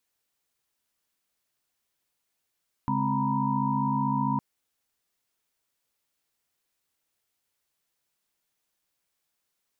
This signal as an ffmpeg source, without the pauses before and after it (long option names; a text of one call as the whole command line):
ffmpeg -f lavfi -i "aevalsrc='0.0316*(sin(2*PI*138.59*t)+sin(2*PI*207.65*t)+sin(2*PI*261.63*t)+sin(2*PI*932.33*t)+sin(2*PI*987.77*t))':duration=1.51:sample_rate=44100" out.wav